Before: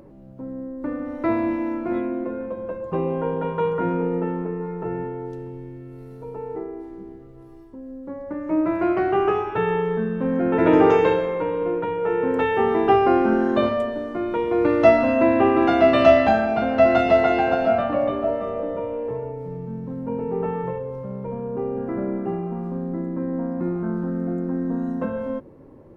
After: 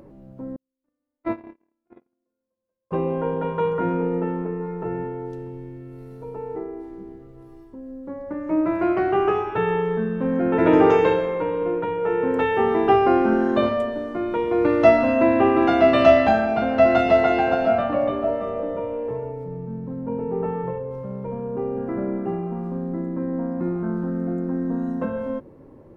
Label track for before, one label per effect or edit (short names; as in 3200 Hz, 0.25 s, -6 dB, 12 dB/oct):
0.560000	2.910000	gate -20 dBFS, range -53 dB
19.440000	20.910000	high shelf 2500 Hz -8 dB